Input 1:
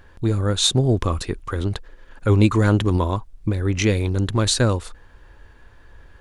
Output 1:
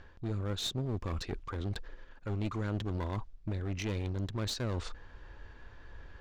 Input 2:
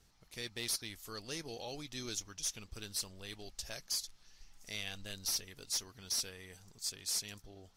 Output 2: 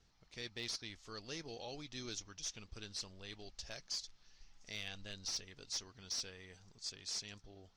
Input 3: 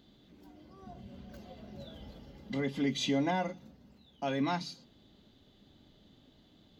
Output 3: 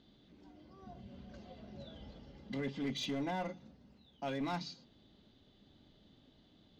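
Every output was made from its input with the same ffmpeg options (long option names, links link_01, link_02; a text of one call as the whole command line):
ffmpeg -i in.wav -af "lowpass=frequency=6300:width=0.5412,lowpass=frequency=6300:width=1.3066,areverse,acompressor=threshold=-30dB:ratio=4,areverse,aeval=exprs='clip(val(0),-1,0.0266)':channel_layout=same,volume=-3dB" out.wav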